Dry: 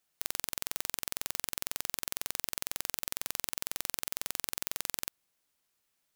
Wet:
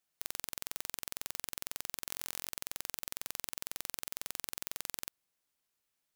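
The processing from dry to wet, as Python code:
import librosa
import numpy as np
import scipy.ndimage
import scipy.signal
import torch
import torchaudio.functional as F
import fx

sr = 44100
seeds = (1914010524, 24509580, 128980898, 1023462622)

y = fx.doubler(x, sr, ms=25.0, db=-5, at=(2.05, 2.49))
y = F.gain(torch.from_numpy(y), -5.0).numpy()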